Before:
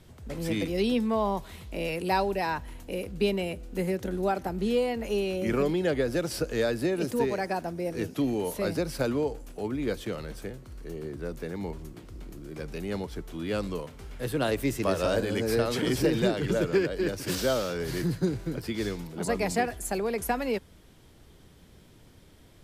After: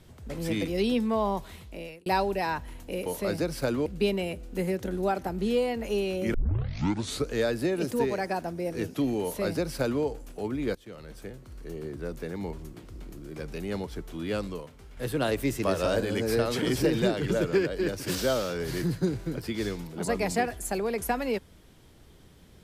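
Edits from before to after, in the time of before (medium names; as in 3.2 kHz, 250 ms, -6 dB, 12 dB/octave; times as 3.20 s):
1.48–2.06 s: fade out
5.54 s: tape start 0.98 s
8.43–9.23 s: copy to 3.06 s
9.95–11.08 s: fade in equal-power, from -20 dB
13.52–14.17 s: fade out quadratic, to -6.5 dB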